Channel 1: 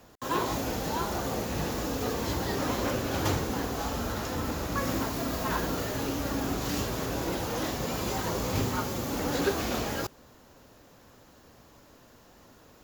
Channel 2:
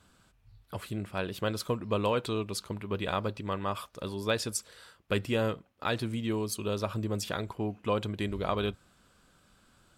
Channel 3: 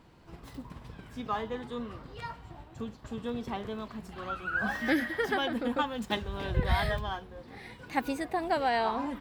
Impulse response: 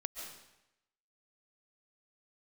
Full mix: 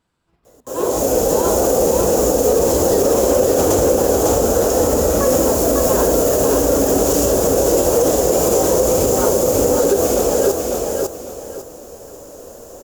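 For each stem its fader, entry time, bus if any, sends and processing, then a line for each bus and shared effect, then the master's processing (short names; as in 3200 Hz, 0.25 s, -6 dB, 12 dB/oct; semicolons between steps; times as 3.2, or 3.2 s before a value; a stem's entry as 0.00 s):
+3.0 dB, 0.45 s, send -15.5 dB, echo send -3 dB, graphic EQ 125/250/500/1000/2000/4000/8000 Hz -7/-3/+12/-6/-12/-11/+10 dB; AGC gain up to 12 dB
-12.0 dB, 0.00 s, no send, no echo send, dry
-14.0 dB, 0.00 s, no send, no echo send, dry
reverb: on, RT60 0.90 s, pre-delay 0.1 s
echo: feedback echo 0.55 s, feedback 28%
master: low shelf 470 Hz -3 dB; limiter -5.5 dBFS, peak gain reduction 7 dB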